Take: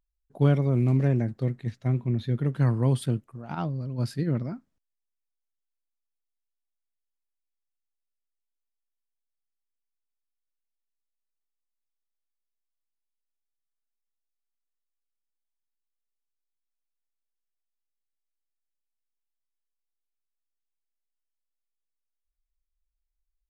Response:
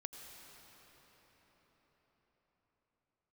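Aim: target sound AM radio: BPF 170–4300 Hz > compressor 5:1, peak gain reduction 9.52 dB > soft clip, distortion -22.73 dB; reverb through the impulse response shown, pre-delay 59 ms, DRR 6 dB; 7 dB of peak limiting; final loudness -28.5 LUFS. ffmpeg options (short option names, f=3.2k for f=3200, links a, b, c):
-filter_complex "[0:a]alimiter=limit=-16.5dB:level=0:latency=1,asplit=2[a][b];[1:a]atrim=start_sample=2205,adelay=59[c];[b][c]afir=irnorm=-1:irlink=0,volume=-3dB[d];[a][d]amix=inputs=2:normalize=0,highpass=170,lowpass=4.3k,acompressor=threshold=-33dB:ratio=5,asoftclip=threshold=-26dB,volume=10.5dB"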